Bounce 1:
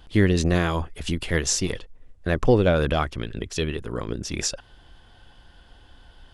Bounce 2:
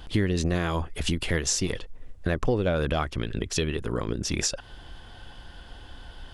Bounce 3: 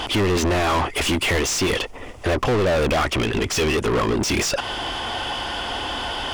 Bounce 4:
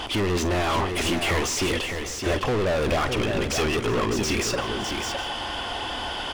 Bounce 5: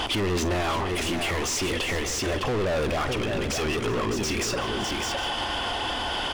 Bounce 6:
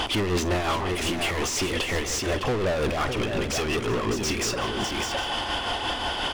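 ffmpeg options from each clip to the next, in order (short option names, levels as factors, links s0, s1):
-af "acompressor=threshold=0.0251:ratio=3,volume=2.11"
-filter_complex "[0:a]equalizer=f=160:t=o:w=0.33:g=-10,equalizer=f=500:t=o:w=0.33:g=-3,equalizer=f=1600:t=o:w=0.33:g=-10,equalizer=f=4000:t=o:w=0.33:g=-8,asplit=2[s0][s1];[s1]highpass=f=720:p=1,volume=63.1,asoftclip=type=tanh:threshold=0.237[s2];[s0][s2]amix=inputs=2:normalize=0,lowpass=f=3600:p=1,volume=0.501"
-af "aecho=1:1:45|376|608|761:0.2|0.112|0.501|0.126,volume=0.596"
-af "alimiter=level_in=1.19:limit=0.0631:level=0:latency=1:release=60,volume=0.841,volume=1.78"
-af "tremolo=f=5.6:d=0.37,volume=1.26"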